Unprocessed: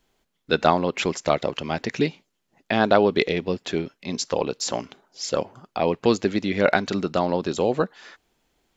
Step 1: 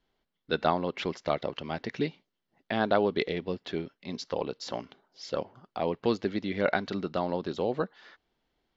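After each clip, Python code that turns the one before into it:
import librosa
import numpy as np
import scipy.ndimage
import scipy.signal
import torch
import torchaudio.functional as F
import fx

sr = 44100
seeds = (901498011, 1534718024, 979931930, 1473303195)

y = scipy.signal.sosfilt(scipy.signal.butter(4, 4900.0, 'lowpass', fs=sr, output='sos'), x)
y = fx.notch(y, sr, hz=2500.0, q=13.0)
y = y * 10.0 ** (-7.5 / 20.0)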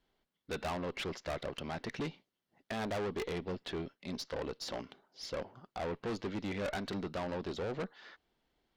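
y = fx.tube_stage(x, sr, drive_db=33.0, bias=0.35)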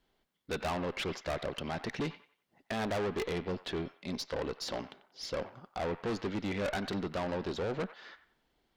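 y = fx.echo_wet_bandpass(x, sr, ms=92, feedback_pct=31, hz=1500.0, wet_db=-12.0)
y = y * 10.0 ** (3.0 / 20.0)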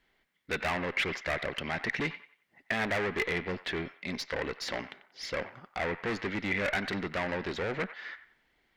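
y = fx.peak_eq(x, sr, hz=2000.0, db=13.5, octaves=0.82)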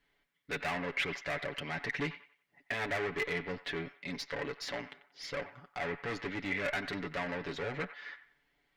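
y = x + 0.68 * np.pad(x, (int(7.0 * sr / 1000.0), 0))[:len(x)]
y = y * 10.0 ** (-5.5 / 20.0)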